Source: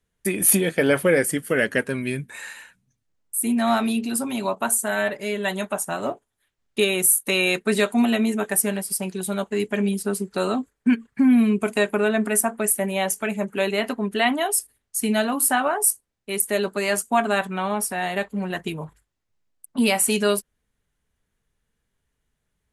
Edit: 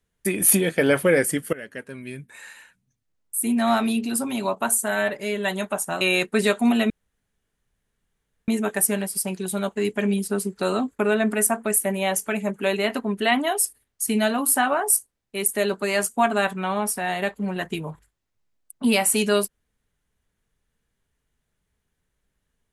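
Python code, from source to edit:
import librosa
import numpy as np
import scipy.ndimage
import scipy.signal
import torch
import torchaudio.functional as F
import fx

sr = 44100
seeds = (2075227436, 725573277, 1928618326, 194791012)

y = fx.edit(x, sr, fx.fade_in_from(start_s=1.53, length_s=2.08, floor_db=-19.0),
    fx.cut(start_s=6.01, length_s=1.33),
    fx.insert_room_tone(at_s=8.23, length_s=1.58),
    fx.cut(start_s=10.74, length_s=1.19), tone=tone)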